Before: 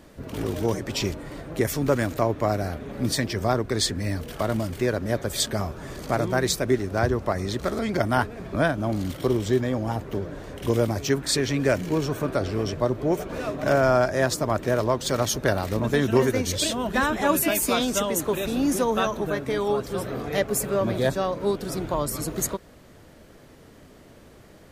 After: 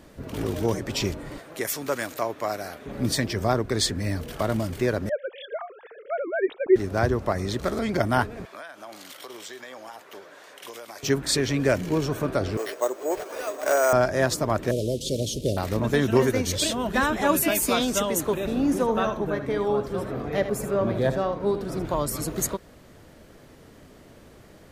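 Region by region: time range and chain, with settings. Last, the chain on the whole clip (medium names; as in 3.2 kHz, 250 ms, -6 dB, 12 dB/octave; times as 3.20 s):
1.38–2.86 s: high-pass 780 Hz 6 dB/octave + treble shelf 6.4 kHz +4 dB
5.09–6.76 s: formants replaced by sine waves + distance through air 270 m
8.45–11.03 s: Bessel high-pass 1.1 kHz + compression 16:1, threshold -35 dBFS
12.57–13.93 s: high-pass 400 Hz 24 dB/octave + careless resampling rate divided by 6×, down none, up hold
14.71–15.57 s: one-bit delta coder 64 kbps, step -33 dBFS + elliptic band-stop 520–3100 Hz, stop band 80 dB
18.34–21.85 s: treble shelf 3 kHz -11 dB + delay 77 ms -10.5 dB
whole clip: none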